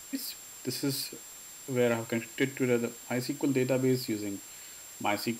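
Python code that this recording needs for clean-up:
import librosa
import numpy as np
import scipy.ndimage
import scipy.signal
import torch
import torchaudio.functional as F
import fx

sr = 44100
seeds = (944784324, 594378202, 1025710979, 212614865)

y = fx.fix_declip(x, sr, threshold_db=-16.0)
y = fx.notch(y, sr, hz=7400.0, q=30.0)
y = fx.noise_reduce(y, sr, print_start_s=1.18, print_end_s=1.68, reduce_db=28.0)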